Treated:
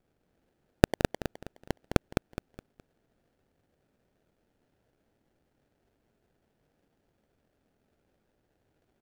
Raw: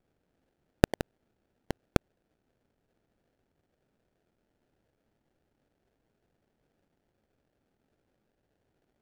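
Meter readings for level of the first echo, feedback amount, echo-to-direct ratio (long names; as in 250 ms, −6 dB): −6.0 dB, 33%, −5.5 dB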